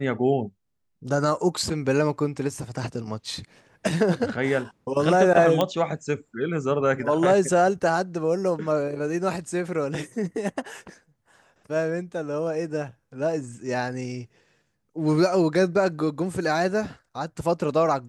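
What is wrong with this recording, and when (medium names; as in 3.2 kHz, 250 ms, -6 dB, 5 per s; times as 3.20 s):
5.61 s: pop -9 dBFS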